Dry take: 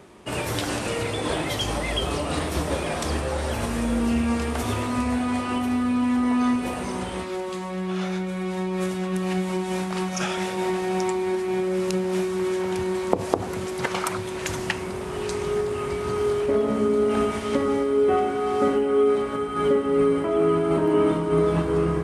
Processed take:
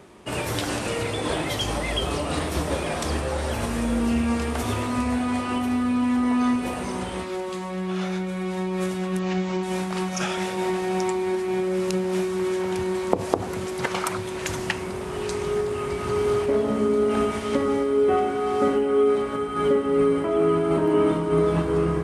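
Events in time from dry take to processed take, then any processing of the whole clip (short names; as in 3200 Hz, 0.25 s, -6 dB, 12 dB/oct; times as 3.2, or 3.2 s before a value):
9.19–9.63 steep low-pass 7100 Hz 48 dB/oct
15.72–16.2 echo throw 0.25 s, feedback 50%, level -4.5 dB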